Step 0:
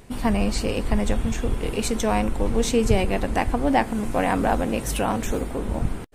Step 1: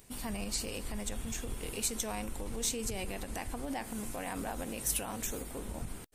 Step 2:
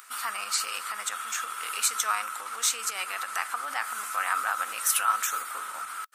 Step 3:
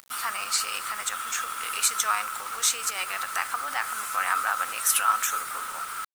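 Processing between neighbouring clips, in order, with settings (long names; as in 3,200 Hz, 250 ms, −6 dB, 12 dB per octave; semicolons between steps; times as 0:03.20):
brickwall limiter −16 dBFS, peak gain reduction 10 dB; first-order pre-emphasis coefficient 0.8
high-pass with resonance 1,300 Hz, resonance Q 13; upward compression, threshold −56 dBFS; level +7.5 dB
bit reduction 7 bits; level +2 dB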